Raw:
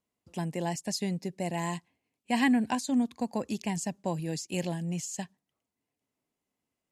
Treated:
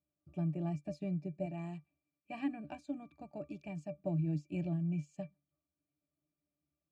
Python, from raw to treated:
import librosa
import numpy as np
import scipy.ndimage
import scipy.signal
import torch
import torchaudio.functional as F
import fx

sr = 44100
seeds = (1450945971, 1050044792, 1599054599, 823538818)

y = fx.low_shelf(x, sr, hz=450.0, db=-6.5, at=(1.45, 3.93))
y = fx.octave_resonator(y, sr, note='D', decay_s=0.12)
y = y * librosa.db_to_amplitude(5.5)